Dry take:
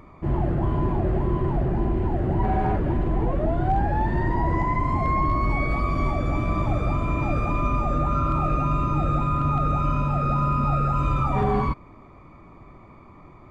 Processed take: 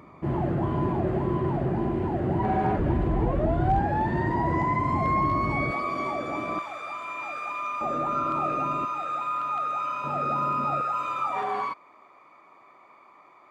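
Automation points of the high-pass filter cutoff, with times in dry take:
120 Hz
from 0:02.78 45 Hz
from 0:03.79 110 Hz
from 0:05.71 350 Hz
from 0:06.59 1,100 Hz
from 0:07.81 330 Hz
from 0:08.85 870 Hz
from 0:10.04 330 Hz
from 0:10.81 710 Hz

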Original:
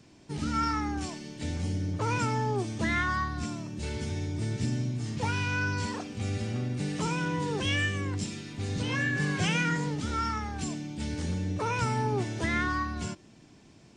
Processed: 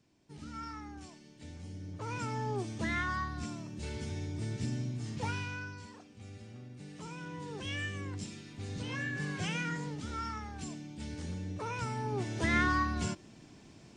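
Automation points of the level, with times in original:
0:01.65 −14.5 dB
0:02.54 −5.5 dB
0:05.30 −5.5 dB
0:05.83 −17 dB
0:06.74 −17 dB
0:07.98 −8 dB
0:12.01 −8 dB
0:12.56 +0.5 dB

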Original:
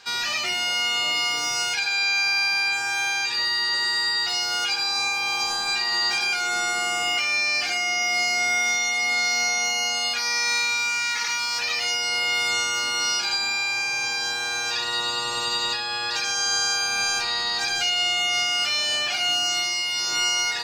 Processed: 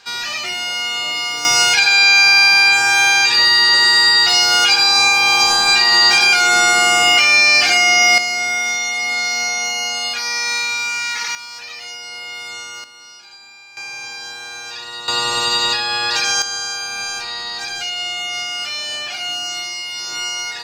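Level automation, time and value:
+2 dB
from 0:01.45 +12 dB
from 0:08.18 +3 dB
from 0:11.35 −7 dB
from 0:12.84 −17 dB
from 0:13.77 −4.5 dB
from 0:15.08 +8 dB
from 0:16.42 −1 dB

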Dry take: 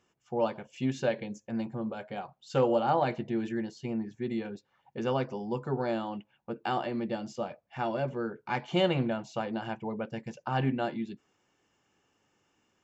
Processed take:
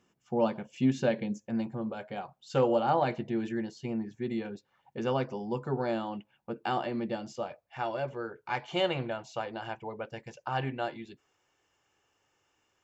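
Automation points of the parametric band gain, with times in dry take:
parametric band 210 Hz 1.1 octaves
0:01.29 +6.5 dB
0:01.72 −0.5 dB
0:07.05 −0.5 dB
0:07.78 −12 dB

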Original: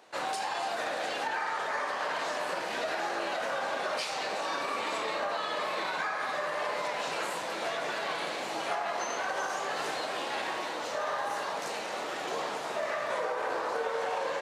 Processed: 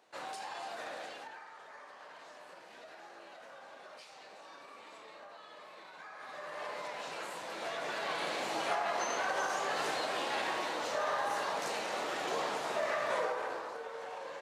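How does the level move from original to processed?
0:00.97 −9.5 dB
0:01.49 −19.5 dB
0:05.91 −19.5 dB
0:06.64 −8.5 dB
0:07.30 −8.5 dB
0:08.37 −1 dB
0:13.22 −1 dB
0:13.77 −11.5 dB

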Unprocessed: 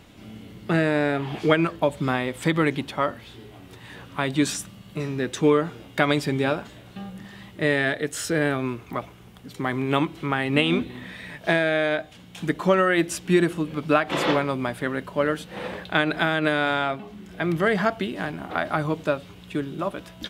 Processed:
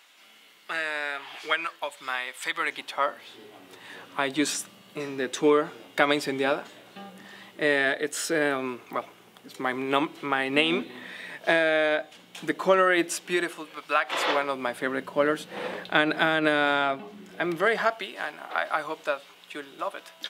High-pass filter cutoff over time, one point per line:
0:02.50 1,200 Hz
0:03.45 340 Hz
0:12.98 340 Hz
0:13.88 1,000 Hz
0:15.02 240 Hz
0:17.23 240 Hz
0:18.07 690 Hz

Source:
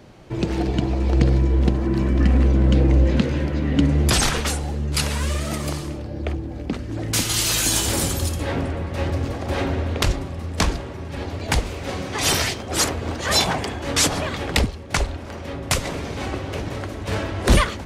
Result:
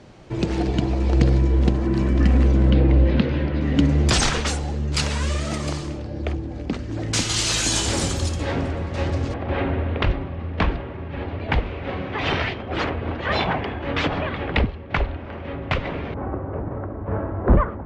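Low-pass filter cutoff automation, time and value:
low-pass filter 24 dB per octave
8,900 Hz
from 0:02.70 4,200 Hz
from 0:03.61 7,900 Hz
from 0:09.34 3,000 Hz
from 0:16.14 1,300 Hz

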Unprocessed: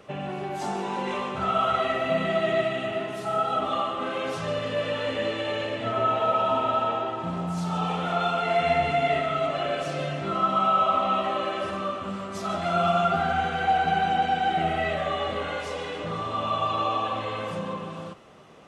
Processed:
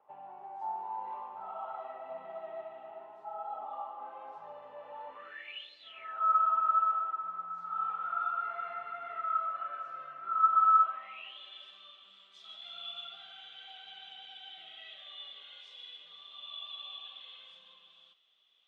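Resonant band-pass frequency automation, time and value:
resonant band-pass, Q 13
0:05.08 870 Hz
0:05.77 4,600 Hz
0:06.20 1,300 Hz
0:10.80 1,300 Hz
0:11.38 3,400 Hz

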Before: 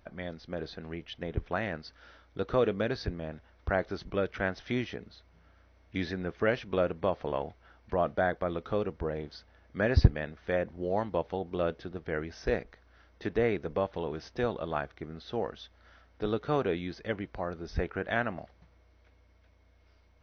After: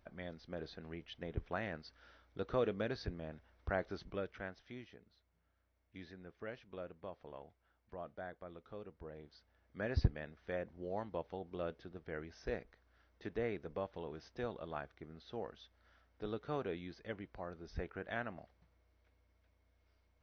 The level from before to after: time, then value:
0:03.99 −8 dB
0:04.75 −19 dB
0:08.76 −19 dB
0:09.99 −11 dB

